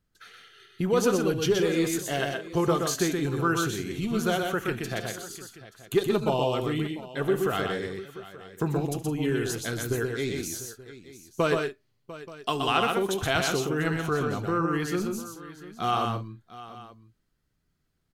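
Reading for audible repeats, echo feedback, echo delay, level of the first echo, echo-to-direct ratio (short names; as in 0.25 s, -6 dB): 5, no steady repeat, 72 ms, -19.0 dB, -3.0 dB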